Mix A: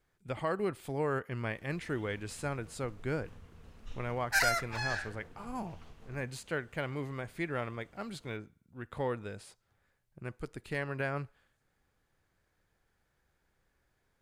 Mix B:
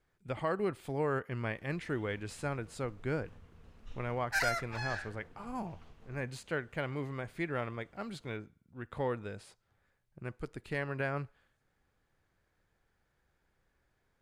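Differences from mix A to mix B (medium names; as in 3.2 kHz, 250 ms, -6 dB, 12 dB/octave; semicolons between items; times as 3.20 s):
background -3.0 dB; master: add treble shelf 5.9 kHz -6 dB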